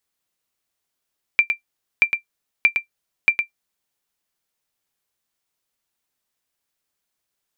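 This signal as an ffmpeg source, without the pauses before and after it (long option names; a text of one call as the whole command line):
ffmpeg -f lavfi -i "aevalsrc='0.596*(sin(2*PI*2360*mod(t,0.63))*exp(-6.91*mod(t,0.63)/0.11)+0.473*sin(2*PI*2360*max(mod(t,0.63)-0.11,0))*exp(-6.91*max(mod(t,0.63)-0.11,0)/0.11))':duration=2.52:sample_rate=44100" out.wav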